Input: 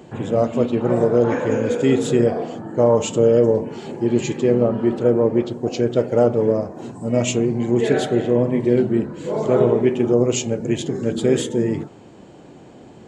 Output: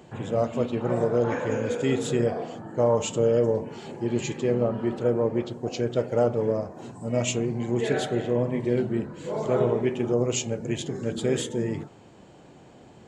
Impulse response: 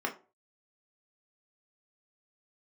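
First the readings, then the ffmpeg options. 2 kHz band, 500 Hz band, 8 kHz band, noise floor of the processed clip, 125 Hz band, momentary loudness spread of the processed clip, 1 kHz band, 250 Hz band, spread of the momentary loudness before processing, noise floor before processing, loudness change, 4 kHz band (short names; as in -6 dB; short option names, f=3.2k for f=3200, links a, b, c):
-4.0 dB, -7.0 dB, -4.0 dB, -51 dBFS, -5.5 dB, 8 LU, -5.0 dB, -8.5 dB, 7 LU, -44 dBFS, -7.0 dB, -4.0 dB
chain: -af "equalizer=f=300:t=o:w=1.6:g=-5,volume=-4dB"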